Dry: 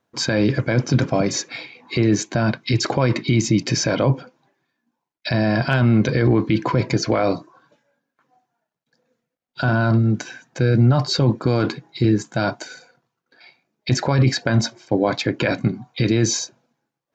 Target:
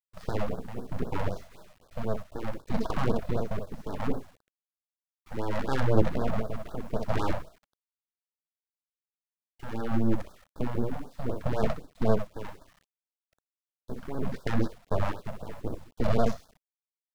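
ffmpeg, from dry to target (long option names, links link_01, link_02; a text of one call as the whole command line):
ffmpeg -i in.wav -filter_complex "[0:a]highshelf=frequency=3400:gain=-7,bandreject=frequency=1200:width=23,tremolo=f=0.68:d=0.71,equalizer=frequency=315:width_type=o:width=0.33:gain=7,equalizer=frequency=500:width_type=o:width=0.33:gain=-9,equalizer=frequency=2500:width_type=o:width=0.33:gain=-11,equalizer=frequency=4000:width_type=o:width=0.33:gain=4,equalizer=frequency=6300:width_type=o:width=0.33:gain=3,aecho=1:1:37|63:0.266|0.501,adynamicsmooth=sensitivity=1:basefreq=740,asettb=1/sr,asplit=3[link_01][link_02][link_03];[link_01]atrim=end=2.714[link_04];[link_02]atrim=start=2.71:end=5.37,asetpts=PTS-STARTPTS,afade=type=in:duration=0.004:curve=qsin,afade=type=out:start_time=2.656:duration=0.004:curve=qsin,highpass=frequency=79:width=0.5412,highpass=frequency=79:width=1.3066[link_05];[link_03]atrim=start=5.366[link_06];[link_04][link_05]acrossfade=duration=0.004:curve1=hsin:curve2=qsin[link_07];[link_07][link_06]acrossfade=duration=0.004:curve1=qsin:curve2=hsin,aeval=exprs='abs(val(0))':channel_layout=same,acrusher=bits=8:mix=0:aa=0.000001,afftfilt=real='re*(1-between(b*sr/1024,330*pow(2500/330,0.5+0.5*sin(2*PI*3.9*pts/sr))/1.41,330*pow(2500/330,0.5+0.5*sin(2*PI*3.9*pts/sr))*1.41))':imag='im*(1-between(b*sr/1024,330*pow(2500/330,0.5+0.5*sin(2*PI*3.9*pts/sr))/1.41,330*pow(2500/330,0.5+0.5*sin(2*PI*3.9*pts/sr))*1.41))':win_size=1024:overlap=0.75,volume=-5dB" out.wav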